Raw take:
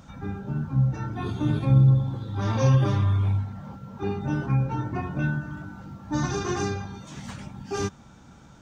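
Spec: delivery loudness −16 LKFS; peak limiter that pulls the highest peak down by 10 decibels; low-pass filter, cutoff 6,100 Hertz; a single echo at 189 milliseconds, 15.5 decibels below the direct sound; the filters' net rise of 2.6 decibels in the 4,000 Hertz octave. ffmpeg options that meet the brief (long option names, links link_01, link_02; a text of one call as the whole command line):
ffmpeg -i in.wav -af "lowpass=6100,equalizer=frequency=4000:width_type=o:gain=4,alimiter=limit=-18dB:level=0:latency=1,aecho=1:1:189:0.168,volume=12.5dB" out.wav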